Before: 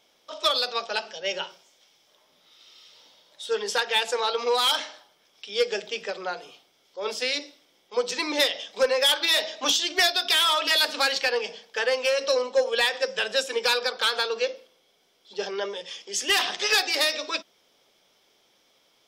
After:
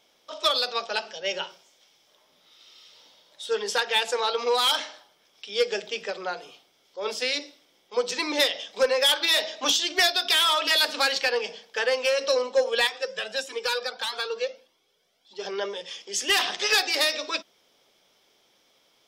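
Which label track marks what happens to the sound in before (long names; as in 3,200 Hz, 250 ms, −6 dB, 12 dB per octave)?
12.870000	15.450000	flanger whose copies keep moving one way rising 1.6 Hz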